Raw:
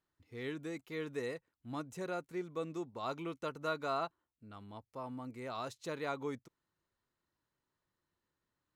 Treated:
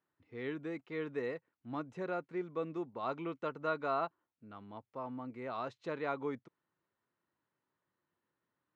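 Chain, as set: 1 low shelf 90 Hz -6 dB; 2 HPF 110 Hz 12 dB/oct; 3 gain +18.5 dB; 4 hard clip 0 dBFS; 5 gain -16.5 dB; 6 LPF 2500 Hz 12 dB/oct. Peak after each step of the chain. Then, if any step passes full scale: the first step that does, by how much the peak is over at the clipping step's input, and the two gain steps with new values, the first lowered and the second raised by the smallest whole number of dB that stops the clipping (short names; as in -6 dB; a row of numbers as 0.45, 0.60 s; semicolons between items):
-23.5, -23.5, -5.0, -5.0, -21.5, -22.0 dBFS; no overload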